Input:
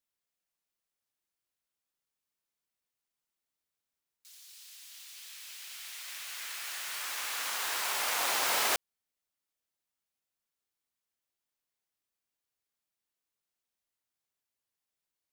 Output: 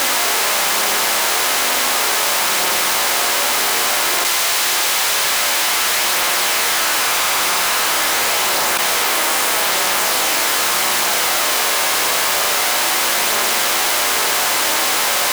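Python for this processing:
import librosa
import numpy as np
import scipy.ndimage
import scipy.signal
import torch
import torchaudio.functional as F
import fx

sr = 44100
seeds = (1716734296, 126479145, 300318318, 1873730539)

y = fx.bin_compress(x, sr, power=0.2)
y = fx.chorus_voices(y, sr, voices=4, hz=0.14, base_ms=12, depth_ms=3.7, mix_pct=55)
y = fx.leveller(y, sr, passes=3)
y = fx.env_flatten(y, sr, amount_pct=100)
y = F.gain(torch.from_numpy(y), 3.0).numpy()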